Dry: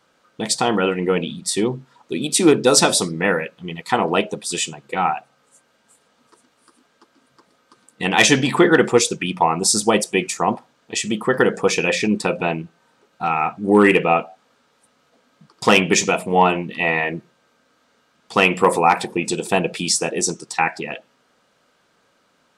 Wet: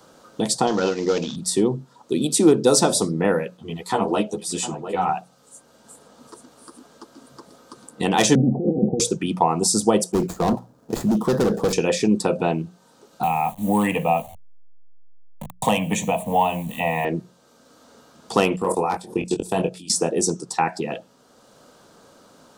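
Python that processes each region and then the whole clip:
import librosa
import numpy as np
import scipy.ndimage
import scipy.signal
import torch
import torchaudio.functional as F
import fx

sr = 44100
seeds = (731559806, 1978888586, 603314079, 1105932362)

y = fx.chain(x, sr, fx.cvsd(bps=32000),
    fx.tilt_eq(slope=2.0), at=(0.67, 1.36))
y = fx.chain(y, sr, fx.echo_single(ms=706, db=-16.5),
    fx.ensemble(), at=(3.57, 5.09))
y = fx.chain(y, sr, fx.over_compress(threshold_db=-19.0, ratio=-1.0),
    fx.cheby_ripple(hz=780.0, ripple_db=6),
    fx.low_shelf(hz=210.0, db=7.0), at=(8.35, 9.0))
y = fx.chain(y, sr, fx.median_filter(points=15),
    fx.low_shelf(hz=350.0, db=9.0),
    fx.clip_hard(threshold_db=-17.0), at=(10.12, 11.73))
y = fx.chain(y, sr, fx.delta_hold(step_db=-38.5),
    fx.fixed_phaser(hz=1400.0, stages=6),
    fx.band_squash(depth_pct=40), at=(13.23, 17.05))
y = fx.chain(y, sr, fx.level_steps(step_db=22),
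    fx.doubler(ms=22.0, db=-6.0), at=(18.56, 19.9))
y = fx.peak_eq(y, sr, hz=2200.0, db=-13.5, octaves=1.4)
y = fx.hum_notches(y, sr, base_hz=60, count=3)
y = fx.band_squash(y, sr, depth_pct=40)
y = F.gain(torch.from_numpy(y), 2.0).numpy()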